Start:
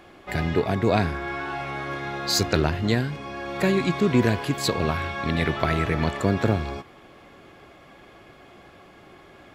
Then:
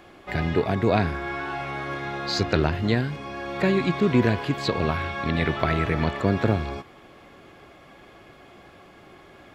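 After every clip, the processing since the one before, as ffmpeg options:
ffmpeg -i in.wav -filter_complex "[0:a]acrossover=split=5000[link_01][link_02];[link_02]acompressor=threshold=-56dB:ratio=4:attack=1:release=60[link_03];[link_01][link_03]amix=inputs=2:normalize=0" out.wav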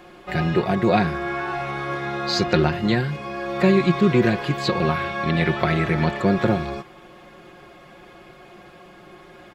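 ffmpeg -i in.wav -af "aecho=1:1:5.6:0.67,volume=1.5dB" out.wav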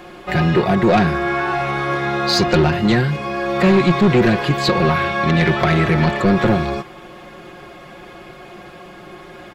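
ffmpeg -i in.wav -af "asoftclip=type=tanh:threshold=-15dB,volume=7.5dB" out.wav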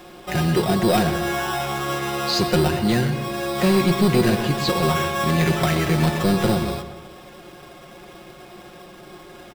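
ffmpeg -i in.wav -filter_complex "[0:a]acrossover=split=1800[link_01][link_02];[link_01]acrusher=samples=10:mix=1:aa=0.000001[link_03];[link_03][link_02]amix=inputs=2:normalize=0,asplit=2[link_04][link_05];[link_05]adelay=128,lowpass=frequency=2200:poles=1,volume=-9dB,asplit=2[link_06][link_07];[link_07]adelay=128,lowpass=frequency=2200:poles=1,volume=0.48,asplit=2[link_08][link_09];[link_09]adelay=128,lowpass=frequency=2200:poles=1,volume=0.48,asplit=2[link_10][link_11];[link_11]adelay=128,lowpass=frequency=2200:poles=1,volume=0.48,asplit=2[link_12][link_13];[link_13]adelay=128,lowpass=frequency=2200:poles=1,volume=0.48[link_14];[link_04][link_06][link_08][link_10][link_12][link_14]amix=inputs=6:normalize=0,volume=-4.5dB" out.wav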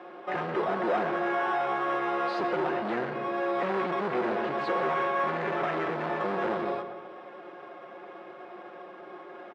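ffmpeg -i in.wav -af "volume=22.5dB,asoftclip=hard,volume=-22.5dB,asuperpass=centerf=800:order=4:qfactor=0.55" out.wav

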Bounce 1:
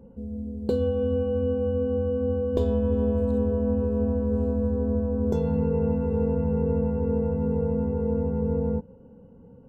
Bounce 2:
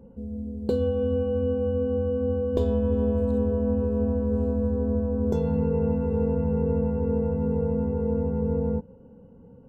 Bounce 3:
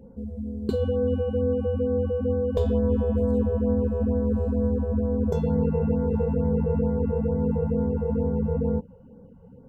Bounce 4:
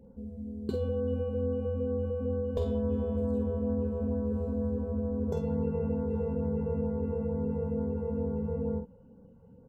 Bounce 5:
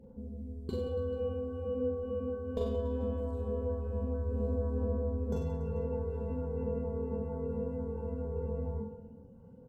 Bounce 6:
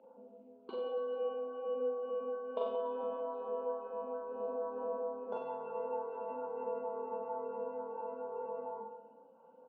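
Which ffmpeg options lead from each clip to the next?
ffmpeg -i in.wav -af anull out.wav
ffmpeg -i in.wav -af "afftfilt=real='re*(1-between(b*sr/1024,260*pow(3100/260,0.5+0.5*sin(2*PI*2.2*pts/sr))/1.41,260*pow(3100/260,0.5+0.5*sin(2*PI*2.2*pts/sr))*1.41))':imag='im*(1-between(b*sr/1024,260*pow(3100/260,0.5+0.5*sin(2*PI*2.2*pts/sr))/1.41,260*pow(3100/260,0.5+0.5*sin(2*PI*2.2*pts/sr))*1.41))':win_size=1024:overlap=0.75,volume=1.5dB" out.wav
ffmpeg -i in.wav -filter_complex "[0:a]asplit=2[link_01][link_02];[link_02]adelay=48,volume=-7dB[link_03];[link_01][link_03]amix=inputs=2:normalize=0,volume=-7dB" out.wav
ffmpeg -i in.wav -af "aphaser=in_gain=1:out_gain=1:delay=4.6:decay=0.3:speed=0.21:type=sinusoidal,aecho=1:1:40|96|174.4|284.2|437.8:0.631|0.398|0.251|0.158|0.1,volume=-4dB" out.wav
ffmpeg -i in.wav -af "highpass=frequency=360:width=0.5412,highpass=frequency=360:width=1.3066,equalizer=frequency=410:width_type=q:width=4:gain=-9,equalizer=frequency=630:width_type=q:width=4:gain=7,equalizer=frequency=910:width_type=q:width=4:gain=10,equalizer=frequency=1300:width_type=q:width=4:gain=8,equalizer=frequency=1900:width_type=q:width=4:gain=-10,equalizer=frequency=2700:width_type=q:width=4:gain=5,lowpass=frequency=3100:width=0.5412,lowpass=frequency=3100:width=1.3066" out.wav

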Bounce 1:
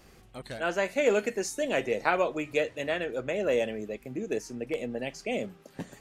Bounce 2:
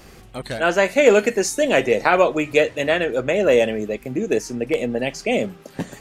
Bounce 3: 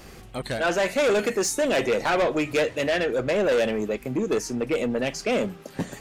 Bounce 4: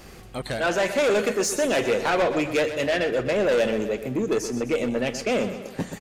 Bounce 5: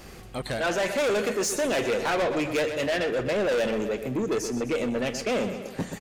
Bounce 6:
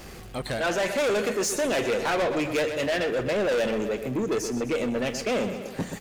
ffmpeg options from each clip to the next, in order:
ffmpeg -i in.wav -af "alimiter=level_in=12dB:limit=-1dB:release=50:level=0:latency=1,volume=-1dB" out.wav
ffmpeg -i in.wav -af "asoftclip=type=tanh:threshold=-18dB" out.wav
ffmpeg -i in.wav -af "aecho=1:1:126|252|378|504|630:0.282|0.141|0.0705|0.0352|0.0176" out.wav
ffmpeg -i in.wav -af "asoftclip=type=tanh:threshold=-21dB" out.wav
ffmpeg -i in.wav -af "aeval=exprs='val(0)+0.5*0.00398*sgn(val(0))':channel_layout=same" out.wav

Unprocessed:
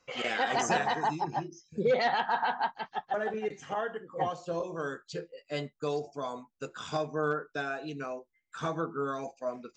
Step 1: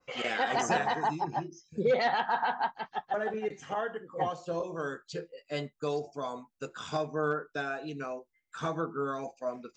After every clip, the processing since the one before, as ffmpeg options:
ffmpeg -i in.wav -af "adynamicequalizer=threshold=0.00631:dfrequency=2300:dqfactor=0.7:tfrequency=2300:tqfactor=0.7:attack=5:release=100:ratio=0.375:range=1.5:mode=cutabove:tftype=highshelf" out.wav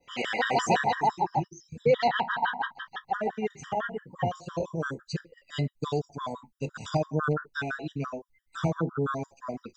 ffmpeg -i in.wav -af "asubboost=boost=4:cutoff=190,afftfilt=real='re*gt(sin(2*PI*5.9*pts/sr)*(1-2*mod(floor(b*sr/1024/970),2)),0)':imag='im*gt(sin(2*PI*5.9*pts/sr)*(1-2*mod(floor(b*sr/1024/970),2)),0)':win_size=1024:overlap=0.75,volume=6dB" out.wav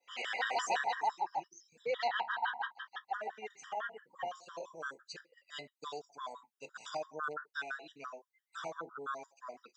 ffmpeg -i in.wav -af "highpass=740,volume=-6dB" out.wav

